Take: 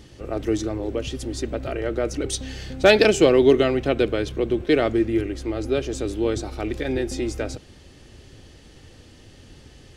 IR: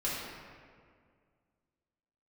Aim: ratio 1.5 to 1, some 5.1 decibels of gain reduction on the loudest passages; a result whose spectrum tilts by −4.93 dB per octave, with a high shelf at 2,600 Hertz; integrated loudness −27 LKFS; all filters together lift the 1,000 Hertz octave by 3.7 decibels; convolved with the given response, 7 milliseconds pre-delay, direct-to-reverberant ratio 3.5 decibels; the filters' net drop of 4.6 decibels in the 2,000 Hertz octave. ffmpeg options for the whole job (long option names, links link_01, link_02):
-filter_complex "[0:a]equalizer=frequency=1000:width_type=o:gain=8,equalizer=frequency=2000:width_type=o:gain=-6,highshelf=frequency=2600:gain=-6.5,acompressor=threshold=-23dB:ratio=1.5,asplit=2[link_01][link_02];[1:a]atrim=start_sample=2205,adelay=7[link_03];[link_02][link_03]afir=irnorm=-1:irlink=0,volume=-10dB[link_04];[link_01][link_04]amix=inputs=2:normalize=0,volume=-3.5dB"